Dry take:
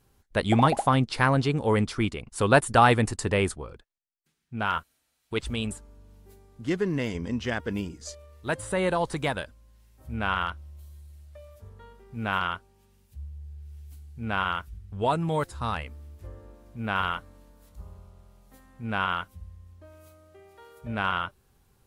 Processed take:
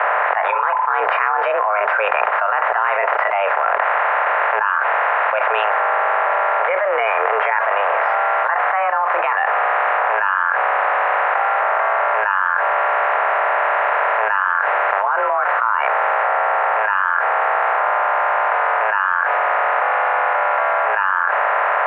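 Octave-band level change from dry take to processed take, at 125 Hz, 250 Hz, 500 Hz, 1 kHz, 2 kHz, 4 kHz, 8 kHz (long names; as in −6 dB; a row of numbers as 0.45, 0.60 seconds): below −35 dB, below −20 dB, +10.0 dB, +15.0 dB, +15.5 dB, 0.0 dB, below −35 dB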